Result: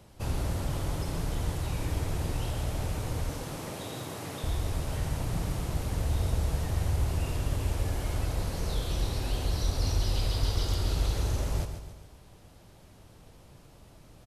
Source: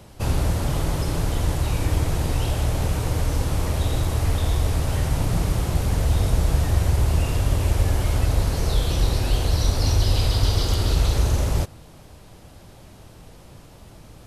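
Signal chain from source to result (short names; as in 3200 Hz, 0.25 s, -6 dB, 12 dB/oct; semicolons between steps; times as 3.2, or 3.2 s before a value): 3.29–4.44 HPF 140 Hz 24 dB/oct; on a send: feedback echo 0.139 s, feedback 48%, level -9 dB; on the sum: gain -9 dB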